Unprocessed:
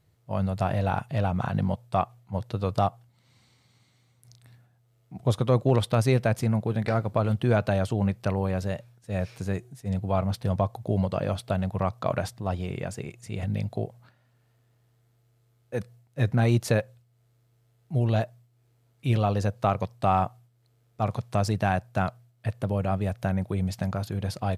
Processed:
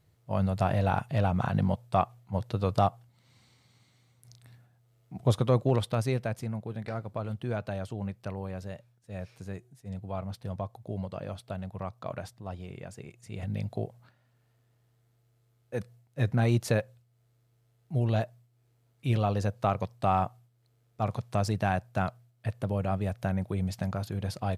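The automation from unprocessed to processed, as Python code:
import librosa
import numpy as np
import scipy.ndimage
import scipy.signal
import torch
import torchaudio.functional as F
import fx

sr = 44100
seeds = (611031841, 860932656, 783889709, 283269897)

y = fx.gain(x, sr, db=fx.line((5.31, -0.5), (6.51, -10.0), (12.88, -10.0), (13.71, -3.0)))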